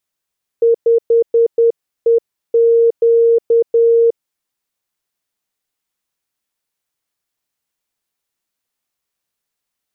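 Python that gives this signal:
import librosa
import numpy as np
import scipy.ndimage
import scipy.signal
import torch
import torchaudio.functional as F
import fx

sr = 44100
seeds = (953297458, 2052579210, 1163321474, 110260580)

y = fx.morse(sr, text='5EQ', wpm=10, hz=463.0, level_db=-7.5)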